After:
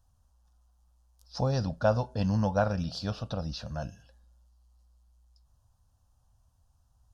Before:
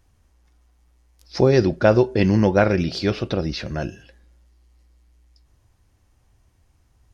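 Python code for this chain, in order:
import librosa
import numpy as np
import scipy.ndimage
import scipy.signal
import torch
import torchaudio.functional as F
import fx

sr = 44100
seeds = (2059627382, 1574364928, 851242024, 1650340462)

y = fx.fixed_phaser(x, sr, hz=880.0, stages=4)
y = y * librosa.db_to_amplitude(-6.0)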